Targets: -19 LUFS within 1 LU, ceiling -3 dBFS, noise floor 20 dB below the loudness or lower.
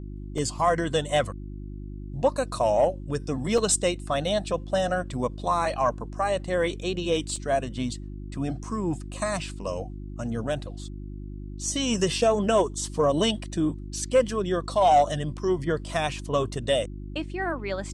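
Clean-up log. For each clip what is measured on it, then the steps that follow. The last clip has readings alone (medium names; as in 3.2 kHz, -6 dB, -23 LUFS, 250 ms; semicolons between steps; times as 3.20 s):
dropouts 3; longest dropout 3.0 ms; hum 50 Hz; highest harmonic 350 Hz; hum level -34 dBFS; loudness -26.5 LUFS; peak level -11.0 dBFS; loudness target -19.0 LUFS
-> interpolate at 0.38/3.58/7.36 s, 3 ms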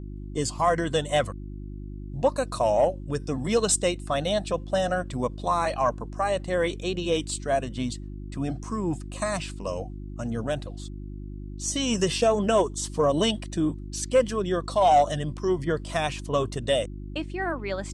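dropouts 0; hum 50 Hz; highest harmonic 350 Hz; hum level -34 dBFS
-> de-hum 50 Hz, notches 7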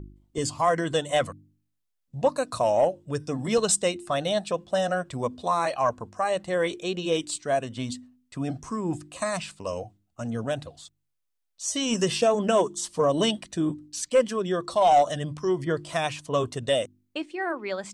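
hum not found; loudness -26.5 LUFS; peak level -11.5 dBFS; loudness target -19.0 LUFS
-> trim +7.5 dB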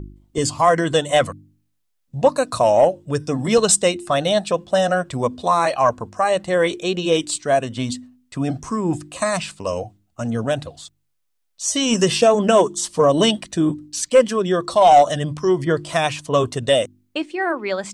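loudness -19.0 LUFS; peak level -4.0 dBFS; noise floor -70 dBFS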